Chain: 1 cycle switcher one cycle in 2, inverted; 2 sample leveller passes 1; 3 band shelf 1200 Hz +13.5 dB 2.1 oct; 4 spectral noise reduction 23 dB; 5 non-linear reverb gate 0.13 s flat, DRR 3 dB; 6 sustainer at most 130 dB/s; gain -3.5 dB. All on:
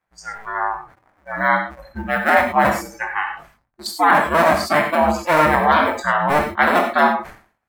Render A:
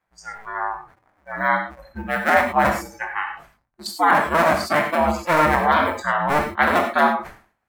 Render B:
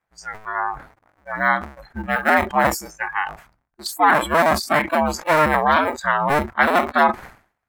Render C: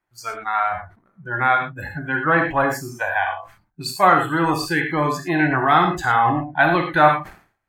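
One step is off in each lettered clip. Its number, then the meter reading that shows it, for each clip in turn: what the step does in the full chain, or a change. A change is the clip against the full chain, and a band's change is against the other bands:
2, loudness change -2.5 LU; 5, 8 kHz band +4.0 dB; 1, 125 Hz band +6.5 dB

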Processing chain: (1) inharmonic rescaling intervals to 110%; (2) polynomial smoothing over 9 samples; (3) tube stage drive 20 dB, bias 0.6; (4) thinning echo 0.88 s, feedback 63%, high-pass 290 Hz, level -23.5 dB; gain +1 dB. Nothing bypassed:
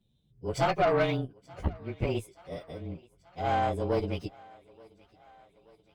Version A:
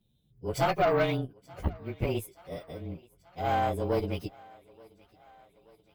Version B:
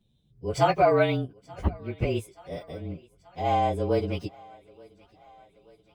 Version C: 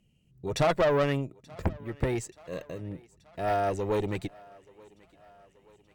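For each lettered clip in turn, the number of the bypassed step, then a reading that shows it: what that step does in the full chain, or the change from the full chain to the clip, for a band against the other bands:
2, 8 kHz band +2.0 dB; 3, crest factor change +4.5 dB; 1, 8 kHz band +5.5 dB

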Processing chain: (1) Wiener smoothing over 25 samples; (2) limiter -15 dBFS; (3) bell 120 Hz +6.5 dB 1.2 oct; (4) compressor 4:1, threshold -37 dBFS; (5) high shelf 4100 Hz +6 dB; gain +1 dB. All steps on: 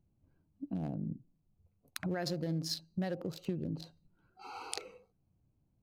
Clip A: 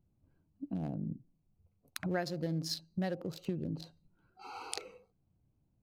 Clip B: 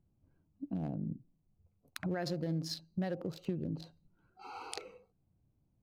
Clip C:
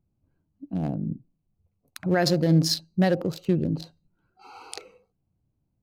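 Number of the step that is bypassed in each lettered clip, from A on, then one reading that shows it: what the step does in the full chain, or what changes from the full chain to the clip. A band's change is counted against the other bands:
2, 2 kHz band +2.0 dB; 5, 8 kHz band -4.5 dB; 4, mean gain reduction 9.0 dB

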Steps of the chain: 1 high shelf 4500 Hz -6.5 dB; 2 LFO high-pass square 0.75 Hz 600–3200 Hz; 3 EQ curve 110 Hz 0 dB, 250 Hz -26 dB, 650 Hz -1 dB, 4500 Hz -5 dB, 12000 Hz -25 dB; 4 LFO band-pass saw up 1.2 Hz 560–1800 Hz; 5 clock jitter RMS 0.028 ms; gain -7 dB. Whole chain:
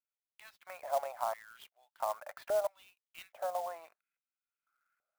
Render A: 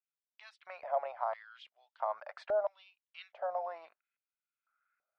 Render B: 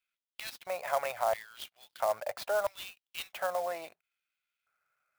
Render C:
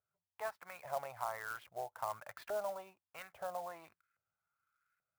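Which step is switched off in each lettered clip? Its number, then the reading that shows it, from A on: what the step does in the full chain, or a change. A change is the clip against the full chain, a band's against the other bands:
5, 4 kHz band -2.5 dB; 4, 4 kHz band +6.5 dB; 2, 2 kHz band +7.0 dB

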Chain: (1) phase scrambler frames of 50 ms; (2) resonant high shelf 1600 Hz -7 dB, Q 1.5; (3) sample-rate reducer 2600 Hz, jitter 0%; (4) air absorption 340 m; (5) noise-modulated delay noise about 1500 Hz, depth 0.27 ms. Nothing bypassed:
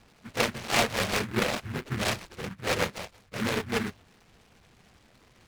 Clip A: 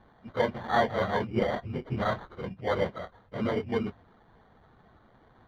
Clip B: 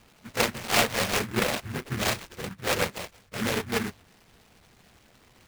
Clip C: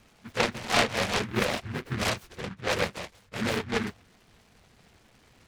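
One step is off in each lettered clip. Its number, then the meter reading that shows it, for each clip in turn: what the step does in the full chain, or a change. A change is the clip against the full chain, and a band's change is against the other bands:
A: 5, 4 kHz band -11.0 dB; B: 4, 8 kHz band +2.5 dB; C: 3, 8 kHz band -2.0 dB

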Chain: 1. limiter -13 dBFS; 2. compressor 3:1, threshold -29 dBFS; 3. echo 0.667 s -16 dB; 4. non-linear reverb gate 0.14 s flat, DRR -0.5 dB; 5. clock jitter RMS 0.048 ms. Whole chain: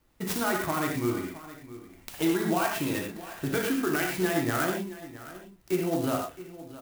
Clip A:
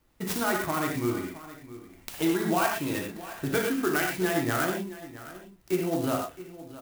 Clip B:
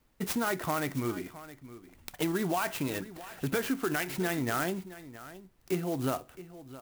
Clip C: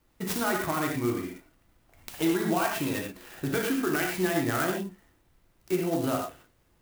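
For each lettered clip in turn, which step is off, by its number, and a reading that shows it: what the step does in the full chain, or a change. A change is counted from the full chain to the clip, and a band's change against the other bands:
1, crest factor change +1.5 dB; 4, crest factor change +1.5 dB; 3, momentary loudness spread change -5 LU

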